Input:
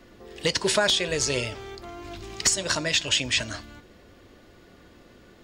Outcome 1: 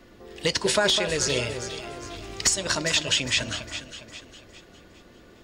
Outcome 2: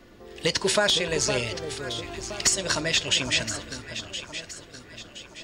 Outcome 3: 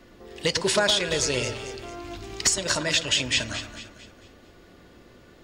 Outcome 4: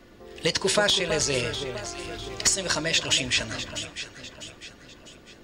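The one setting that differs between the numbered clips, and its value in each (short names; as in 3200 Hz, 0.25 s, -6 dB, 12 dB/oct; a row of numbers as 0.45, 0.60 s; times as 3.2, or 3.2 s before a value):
echo with dull and thin repeats by turns, time: 0.203, 0.51, 0.112, 0.325 s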